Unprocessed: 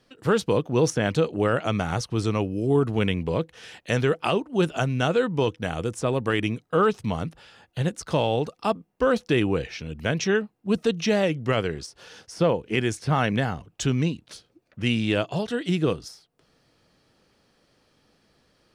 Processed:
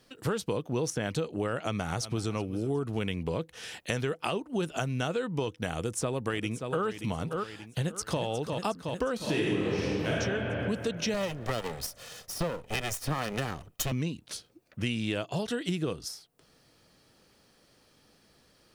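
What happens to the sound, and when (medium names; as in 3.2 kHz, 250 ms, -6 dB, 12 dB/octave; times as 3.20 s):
1.59–2.31 s: echo throw 370 ms, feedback 40%, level -17.5 dB
5.75–6.85 s: echo throw 580 ms, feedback 30%, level -10.5 dB
7.80–8.22 s: echo throw 360 ms, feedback 70%, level -7 dB
9.16–10.11 s: reverb throw, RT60 2.6 s, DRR -9.5 dB
11.14–13.92 s: comb filter that takes the minimum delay 1.6 ms
whole clip: treble shelf 7.3 kHz +11 dB; compression 5:1, threshold -28 dBFS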